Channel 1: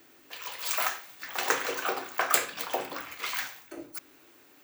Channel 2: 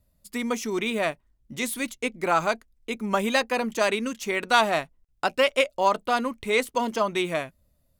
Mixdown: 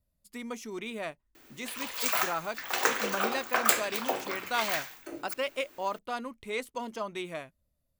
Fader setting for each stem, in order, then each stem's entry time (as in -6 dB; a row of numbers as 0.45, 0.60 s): +0.5, -11.0 dB; 1.35, 0.00 s